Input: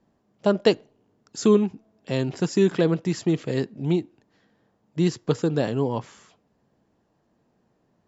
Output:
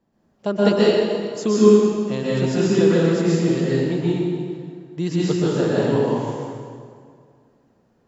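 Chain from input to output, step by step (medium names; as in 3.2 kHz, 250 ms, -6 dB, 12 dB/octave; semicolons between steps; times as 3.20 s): plate-style reverb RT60 2.1 s, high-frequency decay 0.75×, pre-delay 110 ms, DRR -8 dB; trim -3.5 dB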